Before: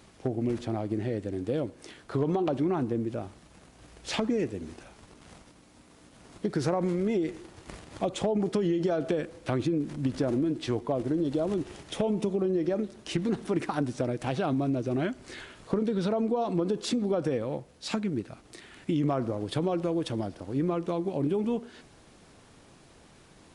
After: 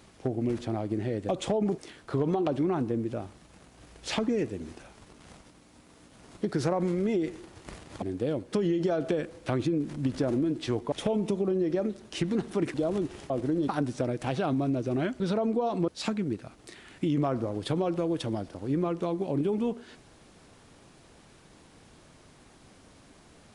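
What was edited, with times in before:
1.29–1.79 swap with 8.03–8.52
10.92–11.3 swap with 11.86–13.68
15.2–15.95 cut
16.63–17.74 cut

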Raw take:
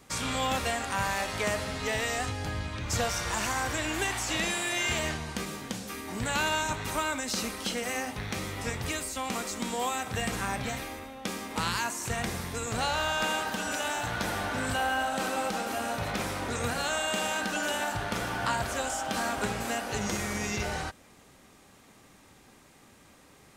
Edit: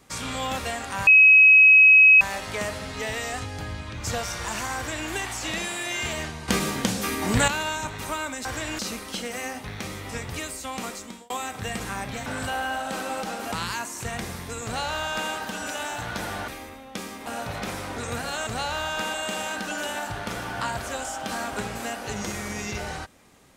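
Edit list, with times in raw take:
1.07 add tone 2550 Hz -9.5 dBFS 1.14 s
3.62–3.96 copy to 7.31
5.34–6.34 gain +11 dB
9.4–9.82 fade out
10.78–11.57 swap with 14.53–15.79
12.7–13.37 copy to 16.99

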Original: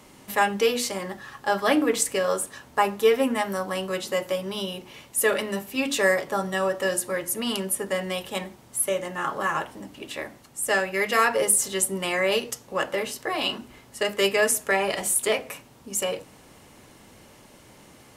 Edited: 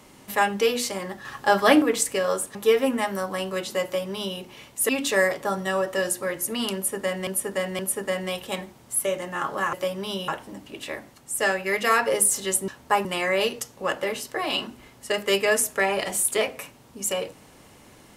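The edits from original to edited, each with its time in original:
1.25–1.82 gain +4.5 dB
2.55–2.92 move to 11.96
4.21–4.76 copy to 9.56
5.26–5.76 cut
7.62–8.14 loop, 3 plays

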